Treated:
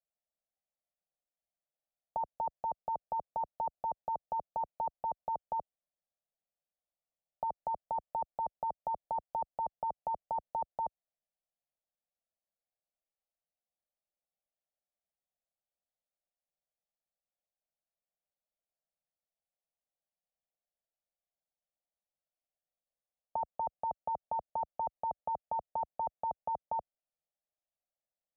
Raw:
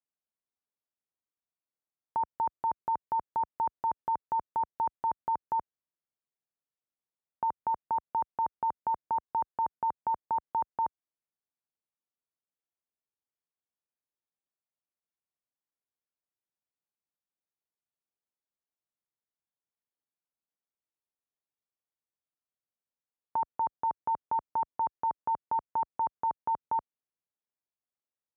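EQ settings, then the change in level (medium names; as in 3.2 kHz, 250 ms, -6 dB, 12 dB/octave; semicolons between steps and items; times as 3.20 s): low-pass 1.4 kHz 24 dB/octave; static phaser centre 400 Hz, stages 6; static phaser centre 1 kHz, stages 6; +7.0 dB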